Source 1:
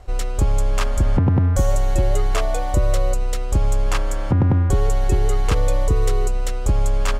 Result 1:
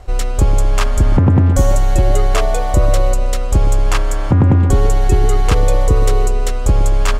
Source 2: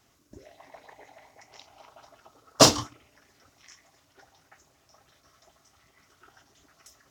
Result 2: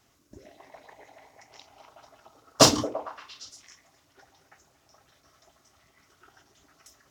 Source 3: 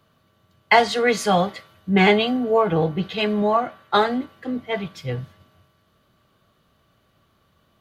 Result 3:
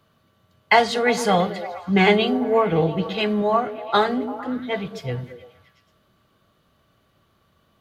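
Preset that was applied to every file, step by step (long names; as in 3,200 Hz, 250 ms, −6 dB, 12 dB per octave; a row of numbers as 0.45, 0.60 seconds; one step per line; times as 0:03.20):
echo through a band-pass that steps 114 ms, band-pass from 260 Hz, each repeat 0.7 octaves, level −6.5 dB
normalise the peak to −1.5 dBFS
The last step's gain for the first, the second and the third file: +5.5, −0.5, −0.5 decibels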